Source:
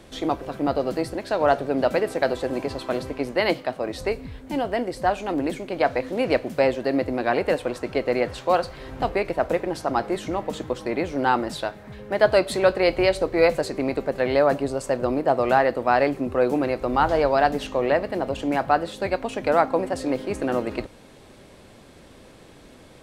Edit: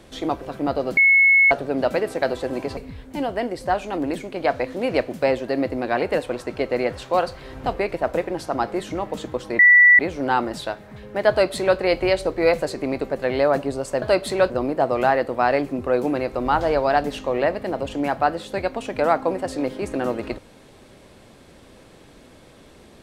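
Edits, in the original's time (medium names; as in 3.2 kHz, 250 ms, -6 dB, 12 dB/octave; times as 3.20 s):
0.97–1.51 s: bleep 2.19 kHz -11 dBFS
2.77–4.13 s: delete
10.95 s: add tone 1.96 kHz -8 dBFS 0.40 s
12.26–12.74 s: copy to 14.98 s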